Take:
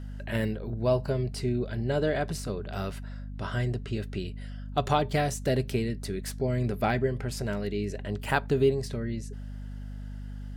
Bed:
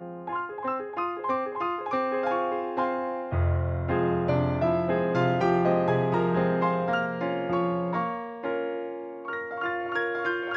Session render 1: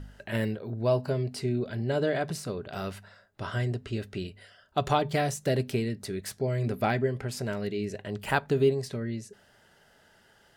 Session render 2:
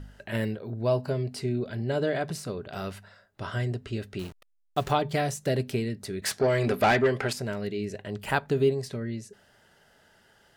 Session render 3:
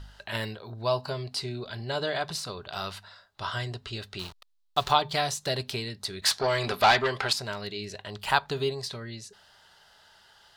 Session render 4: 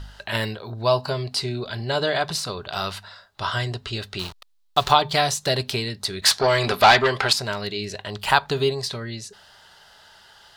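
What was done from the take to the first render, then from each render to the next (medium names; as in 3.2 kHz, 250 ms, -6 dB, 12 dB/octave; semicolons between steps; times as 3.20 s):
de-hum 50 Hz, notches 5
4.19–4.92 s: send-on-delta sampling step -41.5 dBFS; 6.22–7.33 s: overdrive pedal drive 20 dB, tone 4.9 kHz, clips at -12.5 dBFS
ten-band graphic EQ 125 Hz -4 dB, 250 Hz -9 dB, 500 Hz -5 dB, 1 kHz +8 dB, 2 kHz -3 dB, 4 kHz +12 dB
trim +7 dB; peak limiter -2 dBFS, peak gain reduction 2 dB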